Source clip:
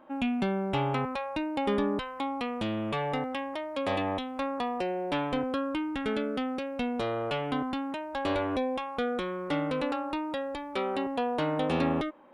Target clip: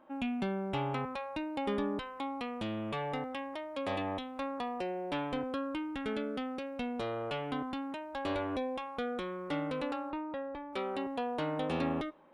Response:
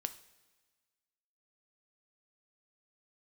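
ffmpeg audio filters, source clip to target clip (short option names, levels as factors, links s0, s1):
-filter_complex "[0:a]asettb=1/sr,asplit=3[s0][s1][s2];[s0]atrim=end=10.104[s3];[s1]atrim=start=10.1:end=10.73,asetpts=PTS-STARTPTS,afade=t=in:d=0.004:c=qsin,afade=t=out:st=0.626:d=0.004:c=qsin,lowpass=2000[s4];[s2]atrim=start=10.726[s5];[s3][s4]acrossfade=d=0.004:c1=hsin:c2=qsin[s6];[s6][s5]acrossfade=d=0.004:c1=qsin:c2=hsin,asplit=2[s7][s8];[1:a]atrim=start_sample=2205[s9];[s8][s9]afir=irnorm=-1:irlink=0,volume=0.299[s10];[s7][s10]amix=inputs=2:normalize=0,volume=0.422"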